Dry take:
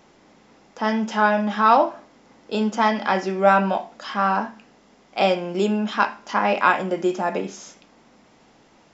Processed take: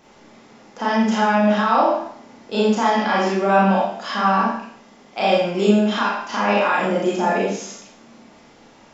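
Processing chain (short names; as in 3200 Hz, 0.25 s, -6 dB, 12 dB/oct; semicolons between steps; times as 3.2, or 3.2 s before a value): limiter -13.5 dBFS, peak gain reduction 11 dB; Schroeder reverb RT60 0.6 s, combs from 27 ms, DRR -5 dB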